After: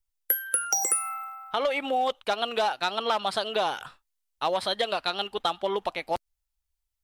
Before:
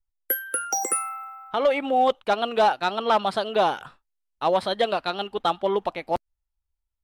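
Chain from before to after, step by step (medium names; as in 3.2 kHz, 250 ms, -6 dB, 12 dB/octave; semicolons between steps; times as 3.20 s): treble shelf 2.4 kHz +8.5 dB; compression, threshold -20 dBFS, peak gain reduction 8 dB; peaking EQ 220 Hz -4 dB 1.8 oct; trim -1.5 dB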